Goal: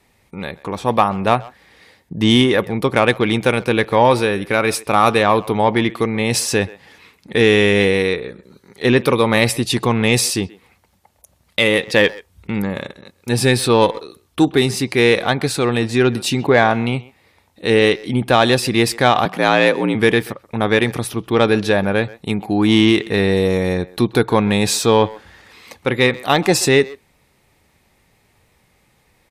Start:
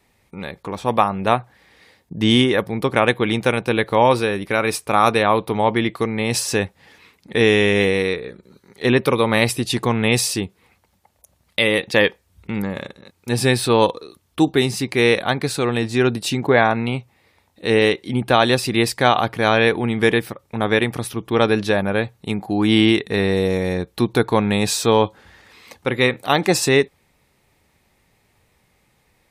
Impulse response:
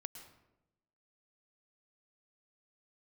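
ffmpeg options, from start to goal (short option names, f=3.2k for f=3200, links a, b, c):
-filter_complex "[0:a]aresample=32000,aresample=44100,asettb=1/sr,asplit=3[a][b][c];[a]atrim=end=19.254[d];[b]atrim=start=19.25:end=19.95,asetpts=PTS-STARTPTS,afade=t=in:d=0.004:c=qsin,afade=t=out:st=0.696:d=0.004:c=qsin,afreqshift=62[e];[c]atrim=start=19.946[f];[d][e]acrossfade=d=0.004:c1=hsin:c2=qsin[g];[g][f]acrossfade=d=0.004:c1=qsin:c2=hsin,asplit=2[h][i];[i]adelay=130,highpass=300,lowpass=3.4k,asoftclip=type=hard:threshold=-10dB,volume=-20dB[j];[h][j]amix=inputs=2:normalize=0,asplit=2[k][l];[l]acontrast=43,volume=2dB[m];[k][m]amix=inputs=2:normalize=0,volume=-7.5dB"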